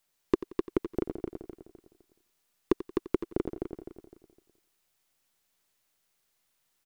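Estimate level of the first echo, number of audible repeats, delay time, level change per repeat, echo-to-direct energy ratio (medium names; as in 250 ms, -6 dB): -15.5 dB, 9, 89 ms, no regular repeats, -4.0 dB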